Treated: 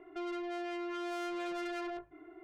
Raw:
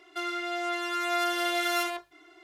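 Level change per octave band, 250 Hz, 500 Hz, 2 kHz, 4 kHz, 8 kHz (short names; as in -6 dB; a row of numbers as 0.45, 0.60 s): -2.5, -6.0, -14.5, -16.5, -18.5 dB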